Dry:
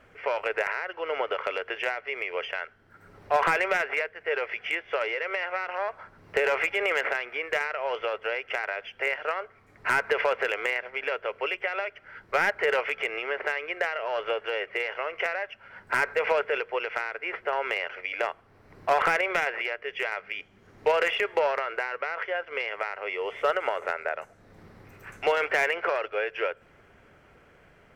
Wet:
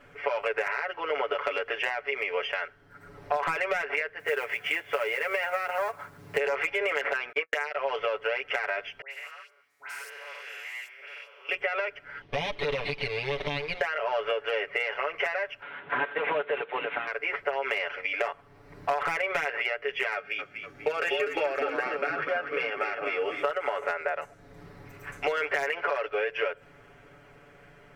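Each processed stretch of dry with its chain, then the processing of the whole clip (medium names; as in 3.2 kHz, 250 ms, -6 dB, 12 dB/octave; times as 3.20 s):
4.19–6.38 s: bass shelf 170 Hz +6.5 dB + companded quantiser 6-bit + high-pass 80 Hz
7.32–7.76 s: high-pass 400 Hz 24 dB/octave + gate -32 dBFS, range -53 dB + three bands compressed up and down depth 100%
9.01–11.49 s: spectrogram pixelated in time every 200 ms + differentiator + phase dispersion highs, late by 103 ms, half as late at 1.9 kHz
12.21–13.81 s: comb filter that takes the minimum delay 0.35 ms + compression 3:1, threshold -29 dBFS + Savitzky-Golay filter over 15 samples
15.62–17.07 s: CVSD coder 16 kbps + high-pass 240 Hz + upward compressor, threshold -37 dBFS
20.14–23.43 s: comb of notches 1 kHz + frequency-shifting echo 245 ms, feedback 44%, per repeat -66 Hz, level -7 dB
whole clip: comb 7 ms, depth 99%; compression 10:1, threshold -24 dBFS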